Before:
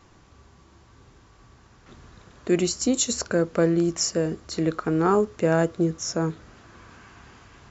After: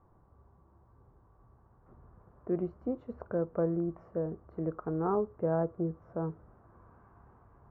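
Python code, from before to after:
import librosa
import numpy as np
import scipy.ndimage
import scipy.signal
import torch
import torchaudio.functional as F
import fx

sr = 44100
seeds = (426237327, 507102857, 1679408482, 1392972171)

y = scipy.signal.sosfilt(scipy.signal.butter(4, 1100.0, 'lowpass', fs=sr, output='sos'), x)
y = fx.peak_eq(y, sr, hz=270.0, db=-5.5, octaves=0.95)
y = y * librosa.db_to_amplitude(-7.0)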